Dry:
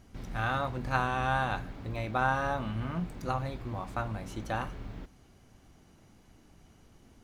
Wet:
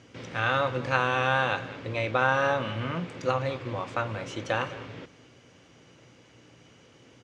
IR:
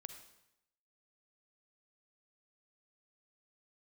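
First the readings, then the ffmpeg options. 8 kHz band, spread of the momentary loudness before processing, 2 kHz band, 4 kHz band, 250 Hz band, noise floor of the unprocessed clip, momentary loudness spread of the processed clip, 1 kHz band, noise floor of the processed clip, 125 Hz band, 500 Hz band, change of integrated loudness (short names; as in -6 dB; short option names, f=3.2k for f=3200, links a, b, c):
+4.5 dB, 10 LU, +7.0 dB, +9.0 dB, +1.5 dB, -60 dBFS, 11 LU, +3.0 dB, -57 dBFS, +1.0 dB, +8.5 dB, +5.0 dB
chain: -filter_complex "[0:a]equalizer=f=2.9k:w=0.84:g=7.5,aecho=1:1:203:0.133,asplit=2[a][b];[b]alimiter=limit=-19.5dB:level=0:latency=1:release=163,volume=-3dB[c];[a][c]amix=inputs=2:normalize=0,aeval=exprs='val(0)+0.002*(sin(2*PI*60*n/s)+sin(2*PI*2*60*n/s)/2+sin(2*PI*3*60*n/s)/3+sin(2*PI*4*60*n/s)/4+sin(2*PI*5*60*n/s)/5)':c=same,highpass=f=110:w=0.5412,highpass=f=110:w=1.3066,equalizer=f=200:t=q:w=4:g=-10,equalizer=f=510:t=q:w=4:g=9,equalizer=f=740:t=q:w=4:g=-5,equalizer=f=4.1k:t=q:w=4:g=-4,lowpass=f=7.5k:w=0.5412,lowpass=f=7.5k:w=1.3066"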